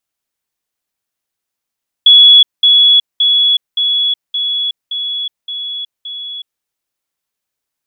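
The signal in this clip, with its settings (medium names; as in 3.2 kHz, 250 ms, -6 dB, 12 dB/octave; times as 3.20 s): level ladder 3.38 kHz -1.5 dBFS, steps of -3 dB, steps 8, 0.37 s 0.20 s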